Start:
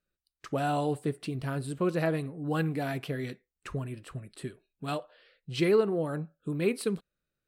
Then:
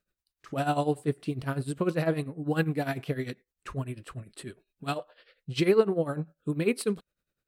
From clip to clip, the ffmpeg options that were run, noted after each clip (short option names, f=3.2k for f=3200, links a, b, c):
-af "tremolo=f=10:d=0.8,volume=5dB"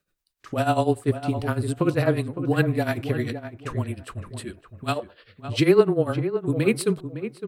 -filter_complex "[0:a]afreqshift=-19,asplit=2[a][b];[b]adelay=560,lowpass=f=1.7k:p=1,volume=-10dB,asplit=2[c][d];[d]adelay=560,lowpass=f=1.7k:p=1,volume=0.2,asplit=2[e][f];[f]adelay=560,lowpass=f=1.7k:p=1,volume=0.2[g];[a][c][e][g]amix=inputs=4:normalize=0,volume=5.5dB"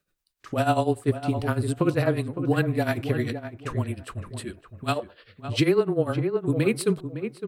-af "alimiter=limit=-11dB:level=0:latency=1:release=238"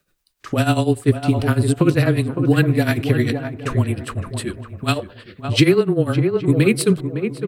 -filter_complex "[0:a]acrossover=split=420|1400[a][b][c];[b]acompressor=threshold=-38dB:ratio=6[d];[a][d][c]amix=inputs=3:normalize=0,asplit=2[e][f];[f]adelay=816.3,volume=-17dB,highshelf=f=4k:g=-18.4[g];[e][g]amix=inputs=2:normalize=0,volume=9dB"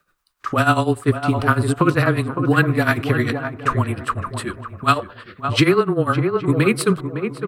-af "equalizer=f=1.2k:t=o:w=0.99:g=14.5,volume=-2.5dB"